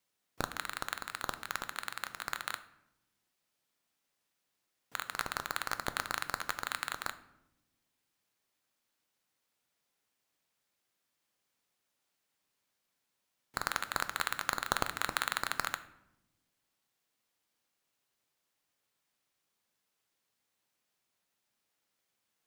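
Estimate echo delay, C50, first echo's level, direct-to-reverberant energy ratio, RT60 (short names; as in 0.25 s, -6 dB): none, 15.0 dB, none, 11.0 dB, 0.90 s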